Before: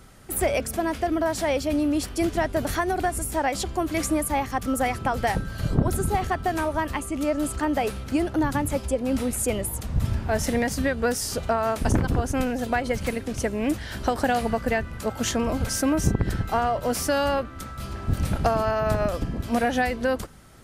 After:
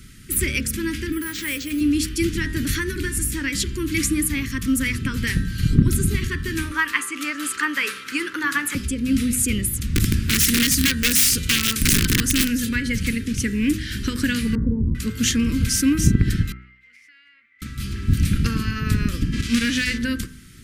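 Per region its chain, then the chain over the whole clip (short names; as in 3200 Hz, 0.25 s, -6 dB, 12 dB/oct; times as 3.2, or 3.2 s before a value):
1.12–1.81 tone controls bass -13 dB, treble -6 dB + careless resampling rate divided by 4×, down none, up hold
6.71–8.75 HPF 550 Hz + bell 1100 Hz +14.5 dB 1.7 oct
9.95–12.69 high shelf 4800 Hz +11 dB + wrapped overs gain 16 dB + notch 690 Hz, Q 7.2
14.55–14.95 steep low-pass 1000 Hz 96 dB/oct + fast leveller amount 70%
16.52–17.62 band-pass 2100 Hz, Q 19 + compressor 2.5:1, threshold -55 dBFS
19.32–19.97 spectral whitening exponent 0.6 + LPF 7300 Hz + overloaded stage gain 17.5 dB
whole clip: Chebyshev band-stop 260–2000 Hz, order 2; de-hum 62.66 Hz, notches 32; gain +7.5 dB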